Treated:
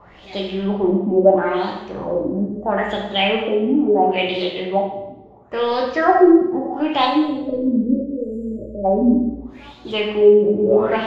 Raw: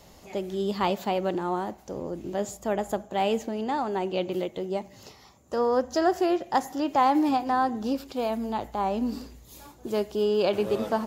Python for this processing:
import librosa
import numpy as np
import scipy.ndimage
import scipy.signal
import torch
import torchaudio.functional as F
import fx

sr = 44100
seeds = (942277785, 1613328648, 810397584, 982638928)

p1 = np.clip(10.0 ** (26.5 / 20.0) * x, -1.0, 1.0) / 10.0 ** (26.5 / 20.0)
p2 = x + F.gain(torch.from_numpy(p1), -7.5).numpy()
p3 = fx.dynamic_eq(p2, sr, hz=2900.0, q=1.1, threshold_db=-46.0, ratio=4.0, max_db=5)
p4 = fx.filter_lfo_lowpass(p3, sr, shape='sine', hz=0.74, low_hz=260.0, high_hz=4100.0, q=6.1)
p5 = fx.spec_erase(p4, sr, start_s=7.05, length_s=1.8, low_hz=640.0, high_hz=7000.0)
p6 = fx.rev_plate(p5, sr, seeds[0], rt60_s=0.88, hf_ratio=0.95, predelay_ms=0, drr_db=-1.5)
y = F.gain(torch.from_numpy(p6), -1.0).numpy()